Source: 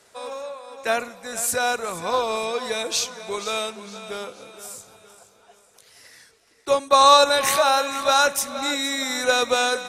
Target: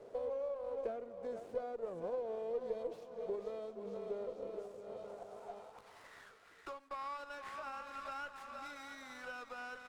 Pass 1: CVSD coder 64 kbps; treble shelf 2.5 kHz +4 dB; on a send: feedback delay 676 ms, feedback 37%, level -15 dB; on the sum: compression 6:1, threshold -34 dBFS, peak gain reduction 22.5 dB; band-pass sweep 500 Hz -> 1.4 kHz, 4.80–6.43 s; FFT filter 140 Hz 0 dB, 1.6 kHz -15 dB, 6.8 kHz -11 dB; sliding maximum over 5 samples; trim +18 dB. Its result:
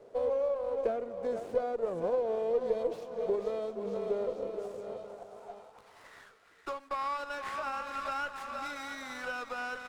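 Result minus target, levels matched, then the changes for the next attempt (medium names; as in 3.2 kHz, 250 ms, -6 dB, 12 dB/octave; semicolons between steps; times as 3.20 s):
compression: peak gain reduction -9 dB
change: compression 6:1, threshold -45 dBFS, peak gain reduction 32 dB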